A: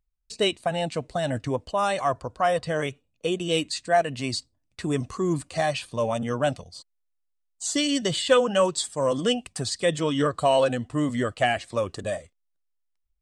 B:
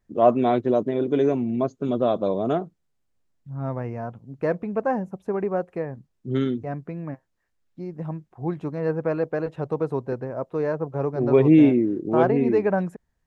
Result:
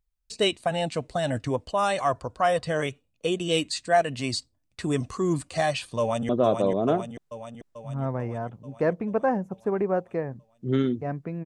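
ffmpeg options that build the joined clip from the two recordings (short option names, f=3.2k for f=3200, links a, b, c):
-filter_complex "[0:a]apad=whole_dur=11.45,atrim=end=11.45,atrim=end=6.292[a];[1:a]atrim=start=1.908:end=7.07[b];[a][b]acrossfade=d=0.004:c1=hsin:c2=hsin,asplit=2[c][d];[d]afade=t=in:st=5.99:d=0.01,afade=t=out:st=6.29:d=0.01,aecho=0:1:440|880|1320|1760|2200|2640|3080|3520|3960|4400:0.530884|0.345075|0.224299|0.145794|0.0947662|0.061598|0.0400387|0.0260252|0.0169164|0.0109956[e];[c][e]amix=inputs=2:normalize=0"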